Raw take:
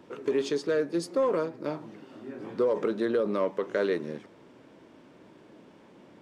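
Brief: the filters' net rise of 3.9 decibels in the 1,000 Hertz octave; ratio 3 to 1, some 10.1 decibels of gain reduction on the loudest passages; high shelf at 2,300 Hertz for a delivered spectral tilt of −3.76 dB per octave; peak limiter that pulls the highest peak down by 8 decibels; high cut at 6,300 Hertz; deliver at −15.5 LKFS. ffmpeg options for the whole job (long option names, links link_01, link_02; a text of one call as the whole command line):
ffmpeg -i in.wav -af "lowpass=6300,equalizer=frequency=1000:width_type=o:gain=6,highshelf=frequency=2300:gain=-8,acompressor=threshold=-35dB:ratio=3,volume=24.5dB,alimiter=limit=-5.5dB:level=0:latency=1" out.wav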